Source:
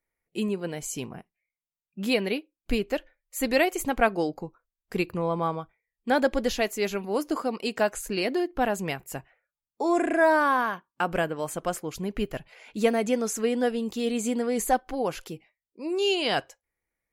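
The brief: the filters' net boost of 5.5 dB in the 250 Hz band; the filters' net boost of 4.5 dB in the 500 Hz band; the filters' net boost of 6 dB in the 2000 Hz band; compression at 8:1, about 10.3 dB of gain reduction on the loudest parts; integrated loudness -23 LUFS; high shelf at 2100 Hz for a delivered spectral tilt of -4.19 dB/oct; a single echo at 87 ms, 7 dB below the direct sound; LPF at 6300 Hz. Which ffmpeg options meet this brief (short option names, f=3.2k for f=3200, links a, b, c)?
-af "lowpass=6.3k,equalizer=f=250:t=o:g=5.5,equalizer=f=500:t=o:g=3.5,equalizer=f=2k:t=o:g=4,highshelf=f=2.1k:g=6.5,acompressor=threshold=-22dB:ratio=8,aecho=1:1:87:0.447,volume=4.5dB"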